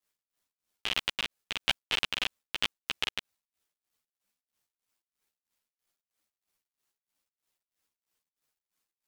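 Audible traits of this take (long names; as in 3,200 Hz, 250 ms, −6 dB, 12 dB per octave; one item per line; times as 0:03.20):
tremolo triangle 3.1 Hz, depth 55%
a quantiser's noise floor 12 bits, dither none
a shimmering, thickened sound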